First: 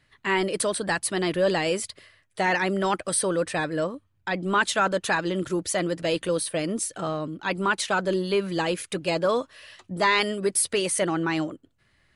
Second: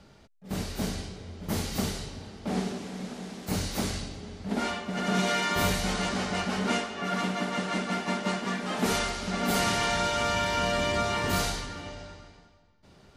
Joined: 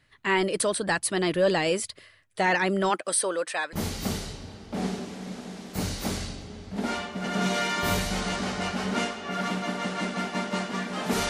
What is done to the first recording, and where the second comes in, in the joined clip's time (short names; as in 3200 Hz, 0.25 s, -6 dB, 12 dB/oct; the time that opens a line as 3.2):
first
2.89–3.73 HPF 230 Hz -> 910 Hz
3.73 switch to second from 1.46 s